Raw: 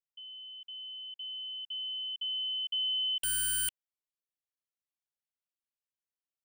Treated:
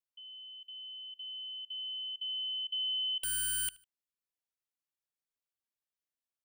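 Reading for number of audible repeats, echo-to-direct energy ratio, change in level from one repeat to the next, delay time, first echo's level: 2, -22.5 dB, -9.0 dB, 76 ms, -23.0 dB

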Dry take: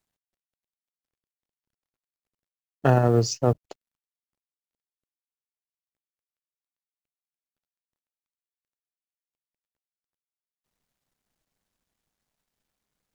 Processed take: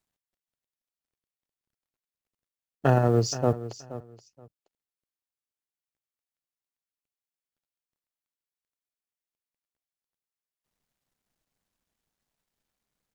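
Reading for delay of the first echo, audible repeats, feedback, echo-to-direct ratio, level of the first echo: 0.475 s, 2, 20%, -14.5 dB, -14.5 dB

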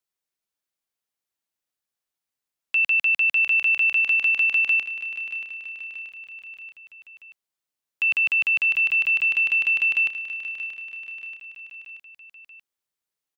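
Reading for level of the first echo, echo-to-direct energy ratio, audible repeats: -12.0 dB, -10.5 dB, 4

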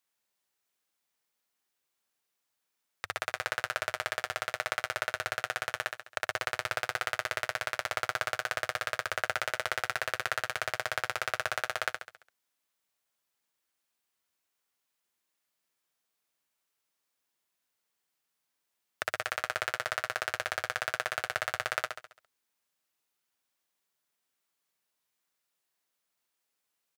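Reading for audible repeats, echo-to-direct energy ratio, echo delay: 5, -5.0 dB, 68 ms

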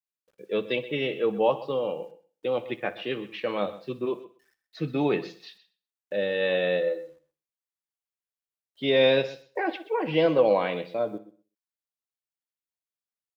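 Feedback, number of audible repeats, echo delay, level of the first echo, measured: no steady repeat, 3, 61 ms, -18.5 dB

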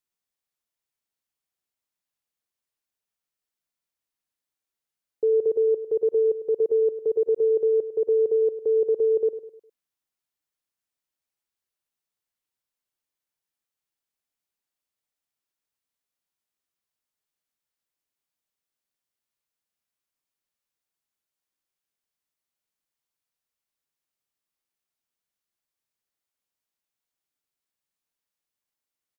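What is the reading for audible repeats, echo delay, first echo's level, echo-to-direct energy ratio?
3, 0.102 s, -13.0 dB, -12.0 dB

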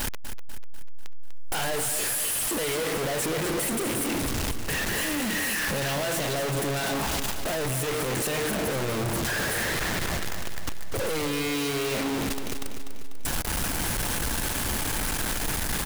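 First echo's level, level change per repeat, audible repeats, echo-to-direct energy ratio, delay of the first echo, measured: -9.0 dB, -5.5 dB, 5, -7.5 dB, 0.246 s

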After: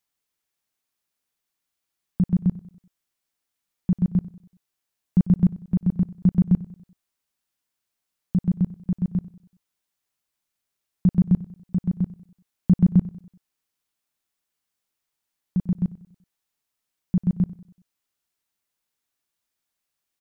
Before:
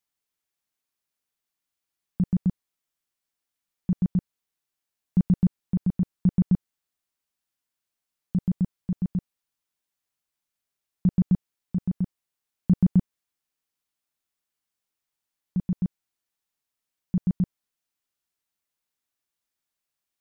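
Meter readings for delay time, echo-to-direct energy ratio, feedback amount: 95 ms, -17.0 dB, 44%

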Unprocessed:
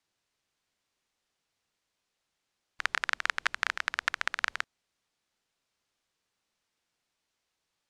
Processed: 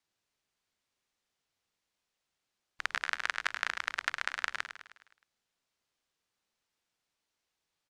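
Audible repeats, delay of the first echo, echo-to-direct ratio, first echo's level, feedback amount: 5, 0.104 s, -8.5 dB, -10.0 dB, 53%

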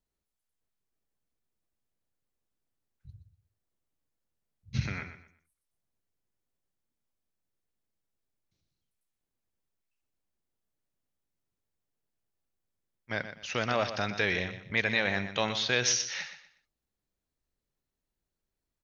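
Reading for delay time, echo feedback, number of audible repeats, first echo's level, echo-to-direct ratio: 0.122 s, 28%, 3, -11.0 dB, -10.5 dB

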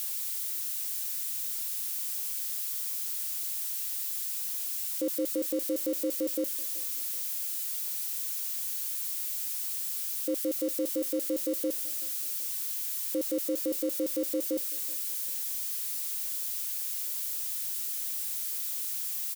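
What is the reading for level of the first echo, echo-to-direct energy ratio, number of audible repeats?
-23.0 dB, -22.0 dB, 2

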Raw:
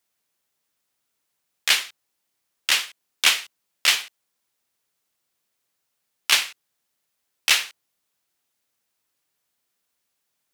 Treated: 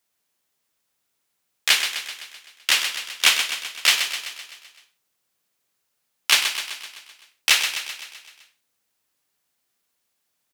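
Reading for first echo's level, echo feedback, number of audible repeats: -8.0 dB, 58%, 6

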